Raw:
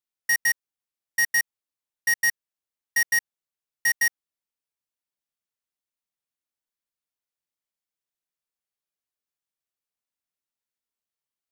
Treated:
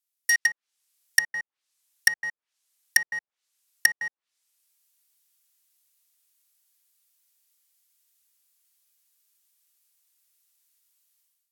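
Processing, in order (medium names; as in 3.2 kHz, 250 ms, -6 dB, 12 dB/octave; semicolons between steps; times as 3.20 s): level rider gain up to 14.5 dB; low-pass that closes with the level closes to 580 Hz, closed at -9.5 dBFS; tilt EQ +5 dB/octave; trim -7.5 dB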